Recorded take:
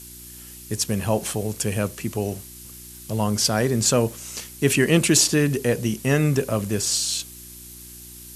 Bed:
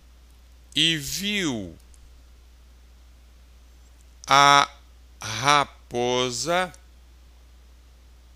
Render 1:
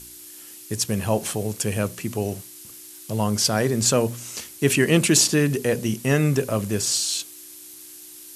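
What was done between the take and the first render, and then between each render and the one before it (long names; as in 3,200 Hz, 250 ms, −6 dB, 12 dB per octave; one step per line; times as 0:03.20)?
hum removal 60 Hz, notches 4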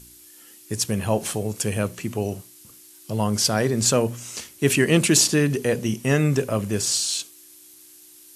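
noise reduction from a noise print 6 dB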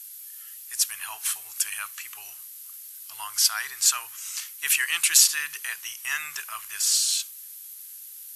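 inverse Chebyshev high-pass filter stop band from 570 Hz, stop band 40 dB
parametric band 12,000 Hz +10 dB 0.38 octaves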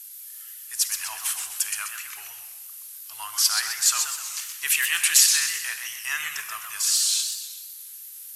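four-comb reverb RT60 1.2 s, combs from 31 ms, DRR 11 dB
feedback echo with a swinging delay time 127 ms, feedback 45%, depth 195 cents, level −6 dB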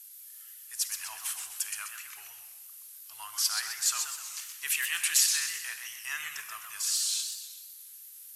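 level −7.5 dB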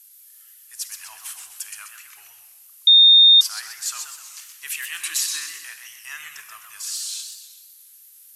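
0:02.87–0:03.41: beep over 3,660 Hz −7.5 dBFS
0:04.99–0:05.66: hollow resonant body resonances 320/1,100/3,900 Hz, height 11 dB, ringing for 35 ms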